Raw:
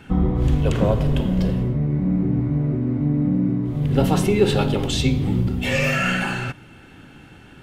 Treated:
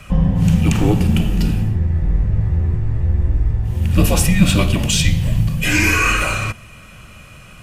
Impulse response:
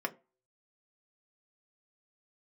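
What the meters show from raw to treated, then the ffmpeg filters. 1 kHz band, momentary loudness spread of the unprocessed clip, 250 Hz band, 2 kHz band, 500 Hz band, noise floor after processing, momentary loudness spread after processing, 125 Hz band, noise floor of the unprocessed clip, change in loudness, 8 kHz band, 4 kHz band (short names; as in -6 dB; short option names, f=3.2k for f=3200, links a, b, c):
+3.0 dB, 4 LU, +1.0 dB, +6.5 dB, -3.5 dB, -40 dBFS, 6 LU, +4.5 dB, -46 dBFS, +4.0 dB, +12.5 dB, +6.0 dB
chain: -af "afreqshift=-230,aexciter=amount=1.3:drive=7.6:freq=2k,equalizer=f=2.1k:w=6.5:g=-5.5,volume=4.5dB"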